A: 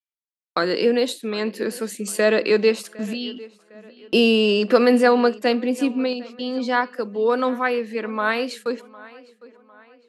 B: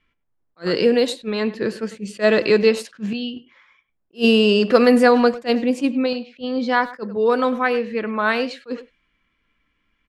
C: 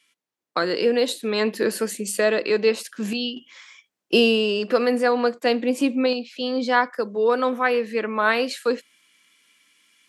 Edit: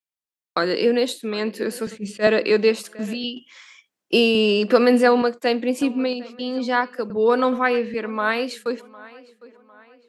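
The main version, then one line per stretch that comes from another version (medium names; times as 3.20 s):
A
1.87–2.27 s: from B
3.24–4.35 s: from C
5.22–5.82 s: from C
7.10–7.94 s: from B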